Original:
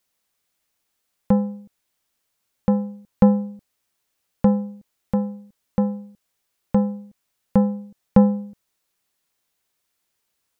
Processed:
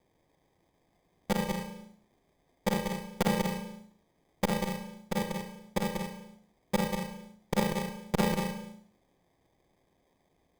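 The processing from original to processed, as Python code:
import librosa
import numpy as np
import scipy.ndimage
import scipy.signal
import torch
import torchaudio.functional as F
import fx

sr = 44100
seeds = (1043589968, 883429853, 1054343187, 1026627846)

p1 = fx.local_reverse(x, sr, ms=36.0)
p2 = fx.peak_eq(p1, sr, hz=180.0, db=-13.5, octaves=2.9)
p3 = fx.hum_notches(p2, sr, base_hz=60, count=3)
p4 = fx.level_steps(p3, sr, step_db=18)
p5 = p3 + F.gain(torch.from_numpy(p4), -2.0).numpy()
p6 = fx.fixed_phaser(p5, sr, hz=400.0, stages=8)
p7 = fx.sample_hold(p6, sr, seeds[0], rate_hz=1400.0, jitter_pct=0)
p8 = p7 + fx.echo_single(p7, sr, ms=189, db=-6.5, dry=0)
p9 = fx.rev_gated(p8, sr, seeds[1], gate_ms=340, shape='falling', drr_db=8.5)
p10 = fx.transformer_sat(p9, sr, knee_hz=330.0)
y = F.gain(torch.from_numpy(p10), 3.0).numpy()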